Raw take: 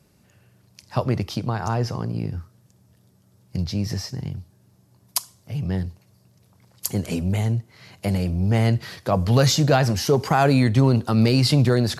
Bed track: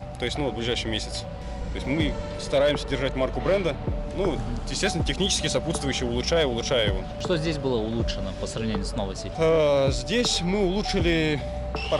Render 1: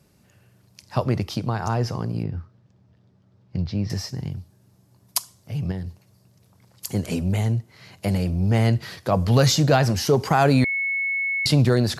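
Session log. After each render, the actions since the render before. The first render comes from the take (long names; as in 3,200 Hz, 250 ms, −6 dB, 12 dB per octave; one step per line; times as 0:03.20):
0:02.23–0:03.90: high-frequency loss of the air 200 metres
0:05.71–0:06.94: downward compressor, threshold −26 dBFS
0:10.64–0:11.46: beep over 2,200 Hz −21.5 dBFS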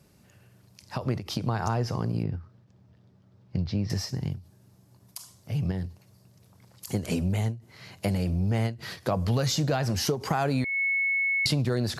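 downward compressor 5 to 1, threshold −23 dBFS, peak gain reduction 10.5 dB
every ending faded ahead of time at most 180 dB per second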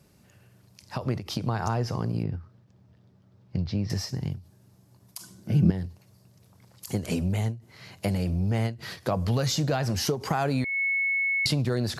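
0:05.20–0:05.70: hollow resonant body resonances 210/320/1,500 Hz, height 18 dB, ringing for 70 ms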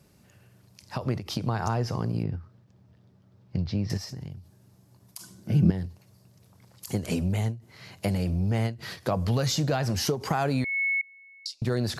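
0:03.97–0:05.37: downward compressor, threshold −34 dBFS
0:11.01–0:11.62: four-pole ladder band-pass 5,900 Hz, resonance 50%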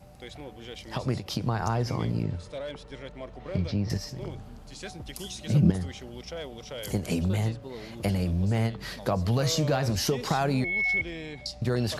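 mix in bed track −15.5 dB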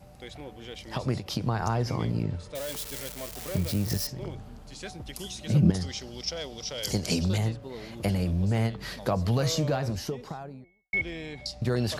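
0:02.55–0:04.07: spike at every zero crossing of −25.5 dBFS
0:05.74–0:07.38: parametric band 5,100 Hz +14.5 dB 0.92 octaves
0:09.28–0:10.93: fade out and dull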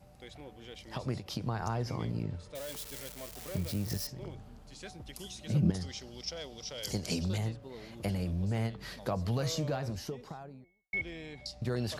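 level −6.5 dB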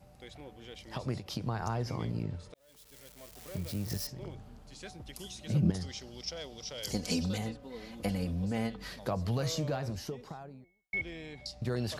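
0:02.54–0:04.04: fade in
0:06.94–0:08.88: comb filter 4 ms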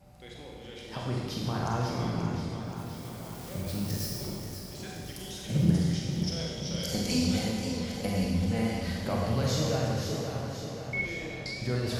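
four-comb reverb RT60 1.6 s, combs from 32 ms, DRR −2.5 dB
feedback echo with a swinging delay time 529 ms, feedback 63%, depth 77 cents, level −8.5 dB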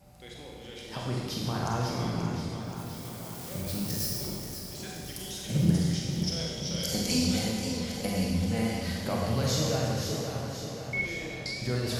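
high-shelf EQ 4,700 Hz +6 dB
mains-hum notches 50/100 Hz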